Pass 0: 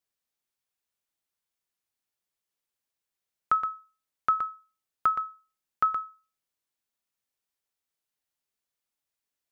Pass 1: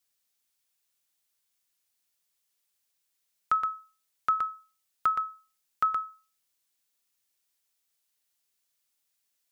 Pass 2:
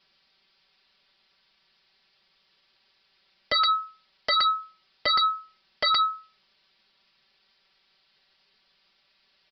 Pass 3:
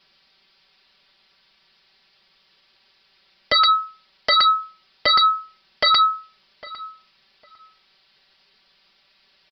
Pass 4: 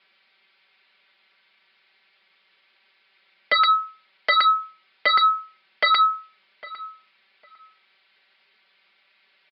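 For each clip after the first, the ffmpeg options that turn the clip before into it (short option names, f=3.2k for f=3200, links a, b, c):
-filter_complex "[0:a]asplit=2[a][b];[b]alimiter=level_in=2dB:limit=-24dB:level=0:latency=1:release=211,volume=-2dB,volume=3dB[c];[a][c]amix=inputs=2:normalize=0,highshelf=f=2.2k:g=10.5,volume=-7.5dB"
-af "aecho=1:1:5.2:0.89,aresample=11025,aeval=exprs='0.168*sin(PI/2*7.08*val(0)/0.168)':c=same,aresample=44100,volume=-3.5dB"
-filter_complex "[0:a]asplit=2[a][b];[b]adelay=804,lowpass=f=2k:p=1,volume=-17dB,asplit=2[c][d];[d]adelay=804,lowpass=f=2k:p=1,volume=0.23[e];[a][c][e]amix=inputs=3:normalize=0,volume=6.5dB"
-af "highpass=f=210:w=0.5412,highpass=f=210:w=1.3066,equalizer=f=280:t=q:w=4:g=-8,equalizer=f=1.5k:t=q:w=4:g=4,equalizer=f=2.2k:t=q:w=4:g=8,lowpass=f=3.9k:w=0.5412,lowpass=f=3.9k:w=1.3066,volume=-3dB"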